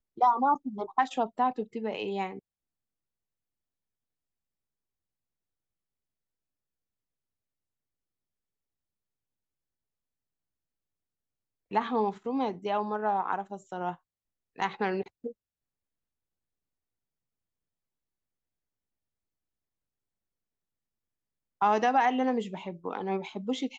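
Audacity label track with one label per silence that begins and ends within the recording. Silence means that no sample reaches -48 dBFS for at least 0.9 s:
2.390000	11.710000	silence
15.320000	21.610000	silence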